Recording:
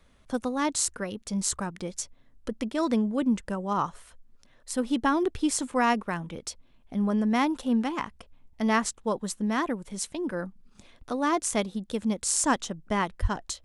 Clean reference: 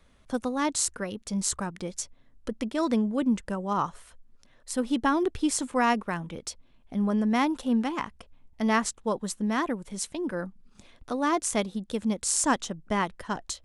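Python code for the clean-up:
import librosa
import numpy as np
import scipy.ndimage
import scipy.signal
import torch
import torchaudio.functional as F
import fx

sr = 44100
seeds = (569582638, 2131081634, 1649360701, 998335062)

y = fx.highpass(x, sr, hz=140.0, slope=24, at=(13.21, 13.33), fade=0.02)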